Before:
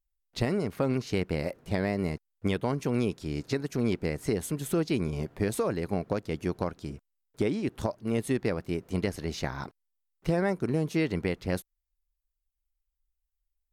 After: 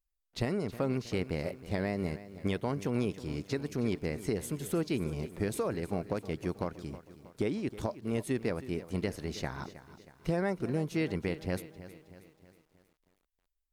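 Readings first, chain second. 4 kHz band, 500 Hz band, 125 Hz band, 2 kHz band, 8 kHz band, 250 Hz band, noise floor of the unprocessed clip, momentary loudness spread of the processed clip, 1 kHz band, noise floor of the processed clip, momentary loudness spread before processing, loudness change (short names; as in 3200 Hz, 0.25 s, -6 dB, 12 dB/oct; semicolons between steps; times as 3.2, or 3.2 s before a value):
-4.0 dB, -4.0 dB, -4.0 dB, -4.0 dB, -4.0 dB, -4.0 dB, -83 dBFS, 9 LU, -4.0 dB, -81 dBFS, 6 LU, -4.0 dB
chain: lo-fi delay 0.318 s, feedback 55%, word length 9-bit, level -15 dB; gain -4 dB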